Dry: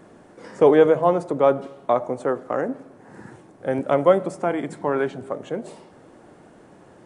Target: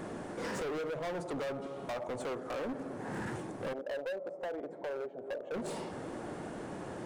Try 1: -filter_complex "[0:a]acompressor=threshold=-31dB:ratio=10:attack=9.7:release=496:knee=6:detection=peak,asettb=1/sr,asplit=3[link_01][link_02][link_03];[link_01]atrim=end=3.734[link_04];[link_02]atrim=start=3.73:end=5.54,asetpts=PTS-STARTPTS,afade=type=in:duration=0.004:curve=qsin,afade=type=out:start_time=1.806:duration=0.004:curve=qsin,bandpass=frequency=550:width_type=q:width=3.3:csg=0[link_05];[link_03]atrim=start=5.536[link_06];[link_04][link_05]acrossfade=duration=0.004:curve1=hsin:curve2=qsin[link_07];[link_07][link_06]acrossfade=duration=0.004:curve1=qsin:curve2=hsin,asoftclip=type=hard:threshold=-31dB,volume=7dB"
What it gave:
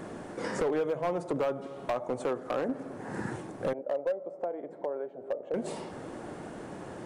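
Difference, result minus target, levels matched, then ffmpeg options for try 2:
hard clipping: distortion −8 dB
-filter_complex "[0:a]acompressor=threshold=-31dB:ratio=10:attack=9.7:release=496:knee=6:detection=peak,asettb=1/sr,asplit=3[link_01][link_02][link_03];[link_01]atrim=end=3.734[link_04];[link_02]atrim=start=3.73:end=5.54,asetpts=PTS-STARTPTS,afade=type=in:duration=0.004:curve=qsin,afade=type=out:start_time=1.806:duration=0.004:curve=qsin,bandpass=frequency=550:width_type=q:width=3.3:csg=0[link_05];[link_03]atrim=start=5.536[link_06];[link_04][link_05]acrossfade=duration=0.004:curve1=hsin:curve2=qsin[link_07];[link_07][link_06]acrossfade=duration=0.004:curve1=qsin:curve2=hsin,asoftclip=type=hard:threshold=-41.5dB,volume=7dB"

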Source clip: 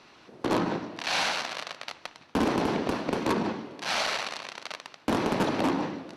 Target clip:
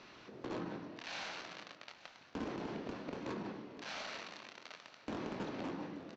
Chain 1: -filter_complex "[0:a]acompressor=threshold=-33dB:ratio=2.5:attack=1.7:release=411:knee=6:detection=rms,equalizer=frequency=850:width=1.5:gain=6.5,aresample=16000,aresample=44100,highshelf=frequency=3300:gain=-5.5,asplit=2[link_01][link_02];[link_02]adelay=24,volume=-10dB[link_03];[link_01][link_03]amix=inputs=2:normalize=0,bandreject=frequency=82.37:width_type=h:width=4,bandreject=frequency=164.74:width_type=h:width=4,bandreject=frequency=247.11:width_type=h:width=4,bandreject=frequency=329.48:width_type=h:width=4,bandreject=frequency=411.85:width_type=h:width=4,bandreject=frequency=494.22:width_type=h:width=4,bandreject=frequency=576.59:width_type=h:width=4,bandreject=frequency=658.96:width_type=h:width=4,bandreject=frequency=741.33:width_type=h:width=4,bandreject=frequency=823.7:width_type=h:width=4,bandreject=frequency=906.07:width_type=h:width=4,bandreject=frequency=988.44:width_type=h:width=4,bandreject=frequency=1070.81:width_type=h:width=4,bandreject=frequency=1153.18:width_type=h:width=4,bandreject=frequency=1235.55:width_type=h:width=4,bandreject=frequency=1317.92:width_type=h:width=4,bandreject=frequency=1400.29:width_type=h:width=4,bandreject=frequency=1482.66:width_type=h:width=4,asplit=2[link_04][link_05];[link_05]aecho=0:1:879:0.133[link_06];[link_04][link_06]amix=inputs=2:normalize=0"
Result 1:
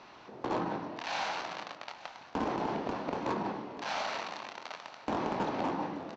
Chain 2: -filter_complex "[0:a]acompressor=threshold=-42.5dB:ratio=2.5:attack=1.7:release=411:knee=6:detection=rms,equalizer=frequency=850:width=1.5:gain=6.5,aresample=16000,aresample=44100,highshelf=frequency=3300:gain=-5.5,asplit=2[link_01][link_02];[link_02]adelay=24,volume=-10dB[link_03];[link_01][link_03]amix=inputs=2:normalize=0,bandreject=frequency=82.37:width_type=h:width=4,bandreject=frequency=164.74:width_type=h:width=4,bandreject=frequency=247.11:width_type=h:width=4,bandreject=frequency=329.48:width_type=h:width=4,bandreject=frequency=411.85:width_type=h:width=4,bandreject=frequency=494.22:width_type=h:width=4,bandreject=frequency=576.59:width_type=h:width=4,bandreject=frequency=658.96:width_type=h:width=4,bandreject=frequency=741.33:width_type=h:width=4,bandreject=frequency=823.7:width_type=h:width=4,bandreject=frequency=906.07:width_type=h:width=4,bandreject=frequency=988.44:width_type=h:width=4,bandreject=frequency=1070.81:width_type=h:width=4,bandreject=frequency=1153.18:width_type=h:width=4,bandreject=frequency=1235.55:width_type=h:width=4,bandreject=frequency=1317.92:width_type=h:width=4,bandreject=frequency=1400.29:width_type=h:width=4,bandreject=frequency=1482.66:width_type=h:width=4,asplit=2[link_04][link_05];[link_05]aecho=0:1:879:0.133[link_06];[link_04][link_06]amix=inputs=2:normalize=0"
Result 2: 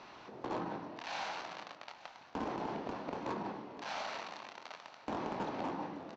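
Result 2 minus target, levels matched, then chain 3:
1,000 Hz band +5.0 dB
-filter_complex "[0:a]acompressor=threshold=-42.5dB:ratio=2.5:attack=1.7:release=411:knee=6:detection=rms,equalizer=frequency=850:width=1.5:gain=-3.5,aresample=16000,aresample=44100,highshelf=frequency=3300:gain=-5.5,asplit=2[link_01][link_02];[link_02]adelay=24,volume=-10dB[link_03];[link_01][link_03]amix=inputs=2:normalize=0,bandreject=frequency=82.37:width_type=h:width=4,bandreject=frequency=164.74:width_type=h:width=4,bandreject=frequency=247.11:width_type=h:width=4,bandreject=frequency=329.48:width_type=h:width=4,bandreject=frequency=411.85:width_type=h:width=4,bandreject=frequency=494.22:width_type=h:width=4,bandreject=frequency=576.59:width_type=h:width=4,bandreject=frequency=658.96:width_type=h:width=4,bandreject=frequency=741.33:width_type=h:width=4,bandreject=frequency=823.7:width_type=h:width=4,bandreject=frequency=906.07:width_type=h:width=4,bandreject=frequency=988.44:width_type=h:width=4,bandreject=frequency=1070.81:width_type=h:width=4,bandreject=frequency=1153.18:width_type=h:width=4,bandreject=frequency=1235.55:width_type=h:width=4,bandreject=frequency=1317.92:width_type=h:width=4,bandreject=frequency=1400.29:width_type=h:width=4,bandreject=frequency=1482.66:width_type=h:width=4,asplit=2[link_04][link_05];[link_05]aecho=0:1:879:0.133[link_06];[link_04][link_06]amix=inputs=2:normalize=0"

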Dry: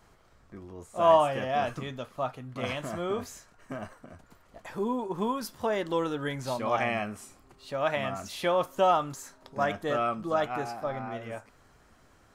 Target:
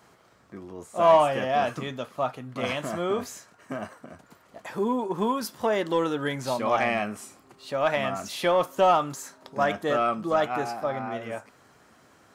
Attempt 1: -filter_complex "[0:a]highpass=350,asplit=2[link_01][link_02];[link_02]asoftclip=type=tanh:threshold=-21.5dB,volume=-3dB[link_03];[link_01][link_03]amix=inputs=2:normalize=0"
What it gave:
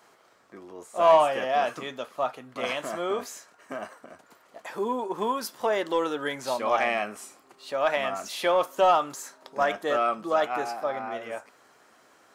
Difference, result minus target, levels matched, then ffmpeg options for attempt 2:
125 Hz band −11.5 dB
-filter_complex "[0:a]highpass=140,asplit=2[link_01][link_02];[link_02]asoftclip=type=tanh:threshold=-21.5dB,volume=-3dB[link_03];[link_01][link_03]amix=inputs=2:normalize=0"

